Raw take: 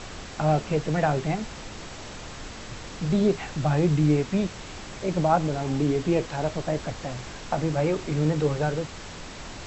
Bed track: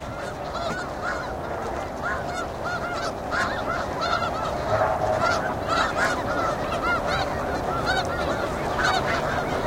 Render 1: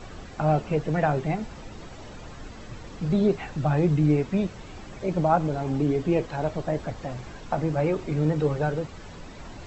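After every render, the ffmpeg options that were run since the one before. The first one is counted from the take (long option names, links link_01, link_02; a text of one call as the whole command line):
ffmpeg -i in.wav -af "afftdn=noise_reduction=10:noise_floor=-40" out.wav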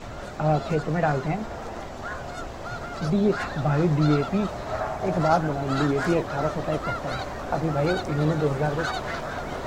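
ffmpeg -i in.wav -i bed.wav -filter_complex "[1:a]volume=-7dB[link_01];[0:a][link_01]amix=inputs=2:normalize=0" out.wav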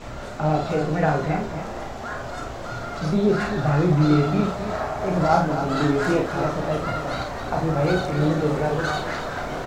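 ffmpeg -i in.wav -filter_complex "[0:a]asplit=2[link_01][link_02];[link_02]adelay=33,volume=-5.5dB[link_03];[link_01][link_03]amix=inputs=2:normalize=0,aecho=1:1:49.56|265.3:0.501|0.355" out.wav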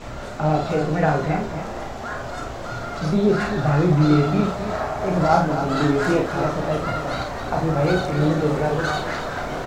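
ffmpeg -i in.wav -af "volume=1.5dB" out.wav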